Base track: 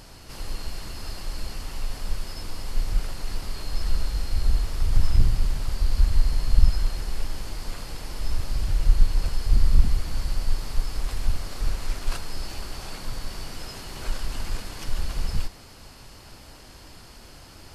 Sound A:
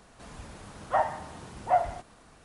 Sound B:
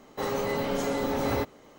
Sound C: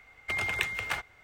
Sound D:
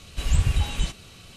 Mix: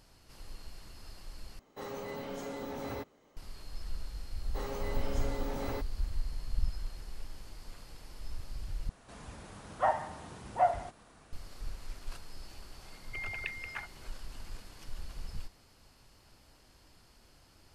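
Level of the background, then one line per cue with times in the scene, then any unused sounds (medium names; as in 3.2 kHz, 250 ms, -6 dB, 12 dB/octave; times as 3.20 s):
base track -15 dB
1.59 s: replace with B -12 dB
4.37 s: add B -10.5 dB
8.89 s: replace with A -3 dB
12.85 s: add C -9 dB + resonances exaggerated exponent 2
not used: D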